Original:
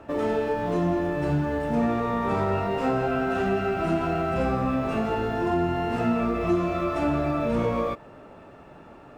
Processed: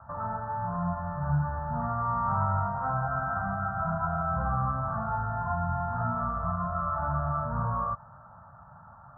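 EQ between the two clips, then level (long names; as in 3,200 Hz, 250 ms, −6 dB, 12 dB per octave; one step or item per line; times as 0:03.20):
high-pass filter 54 Hz
Chebyshev band-stop filter 130–990 Hz, order 2
Butterworth low-pass 1,500 Hz 72 dB per octave
+2.5 dB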